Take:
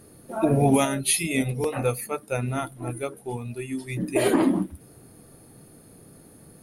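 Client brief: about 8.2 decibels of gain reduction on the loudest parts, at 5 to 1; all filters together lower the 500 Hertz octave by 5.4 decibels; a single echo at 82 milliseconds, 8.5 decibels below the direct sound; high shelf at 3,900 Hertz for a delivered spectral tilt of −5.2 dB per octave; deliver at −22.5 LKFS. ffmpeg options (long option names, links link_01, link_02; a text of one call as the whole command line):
ffmpeg -i in.wav -af "equalizer=frequency=500:width_type=o:gain=-7,highshelf=frequency=3900:gain=-6,acompressor=threshold=-27dB:ratio=5,aecho=1:1:82:0.376,volume=9.5dB" out.wav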